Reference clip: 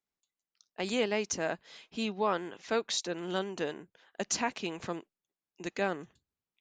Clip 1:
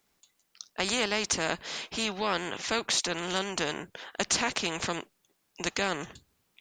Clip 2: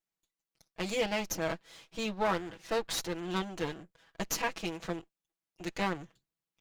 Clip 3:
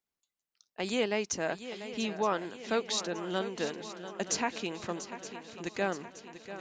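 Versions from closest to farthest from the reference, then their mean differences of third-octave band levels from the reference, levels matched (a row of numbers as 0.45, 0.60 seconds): 3, 2, 1; 4.0, 5.5, 8.5 decibels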